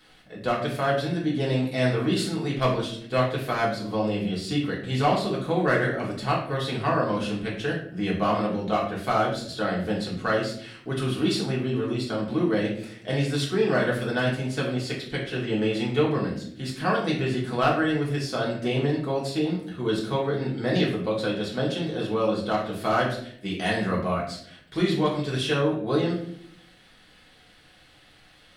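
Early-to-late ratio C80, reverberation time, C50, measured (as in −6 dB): 8.5 dB, 0.65 s, 5.5 dB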